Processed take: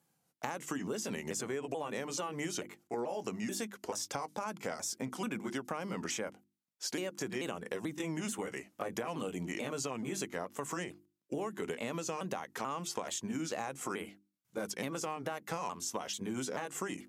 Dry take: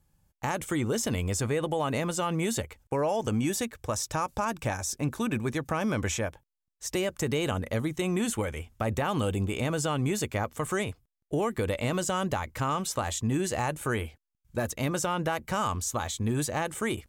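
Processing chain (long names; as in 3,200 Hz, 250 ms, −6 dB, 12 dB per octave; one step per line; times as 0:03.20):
pitch shifter swept by a sawtooth −3.5 semitones, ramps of 436 ms
high-pass filter 170 Hz 24 dB per octave
mains-hum notches 50/100/150/200/250/300/350 Hz
downward compressor, threshold −34 dBFS, peak gain reduction 9.5 dB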